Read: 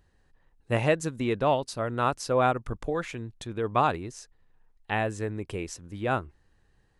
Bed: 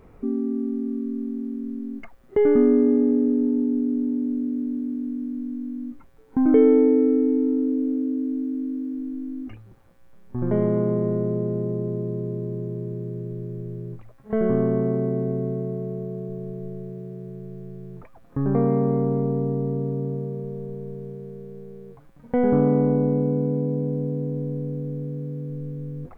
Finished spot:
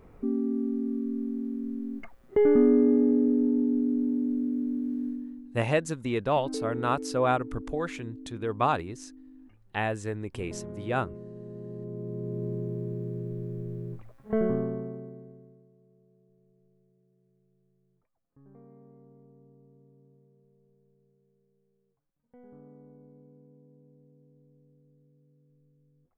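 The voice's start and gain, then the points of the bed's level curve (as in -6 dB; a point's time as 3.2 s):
4.85 s, -1.5 dB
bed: 5.07 s -3 dB
5.56 s -19 dB
11.33 s -19 dB
12.45 s -3 dB
14.37 s -3 dB
15.71 s -33 dB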